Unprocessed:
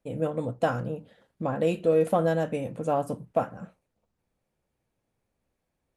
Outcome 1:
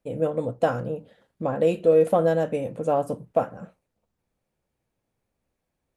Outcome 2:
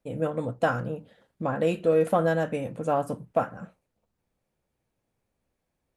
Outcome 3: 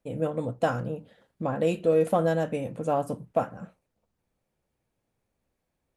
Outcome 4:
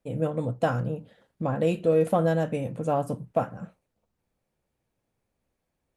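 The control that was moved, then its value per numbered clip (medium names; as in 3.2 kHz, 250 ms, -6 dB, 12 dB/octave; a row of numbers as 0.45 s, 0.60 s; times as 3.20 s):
dynamic bell, frequency: 500 Hz, 1.5 kHz, 7 kHz, 130 Hz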